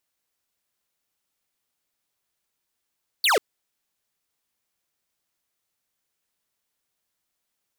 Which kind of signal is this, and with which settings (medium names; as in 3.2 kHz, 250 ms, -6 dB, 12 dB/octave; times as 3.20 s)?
laser zap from 4.7 kHz, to 370 Hz, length 0.14 s square, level -19 dB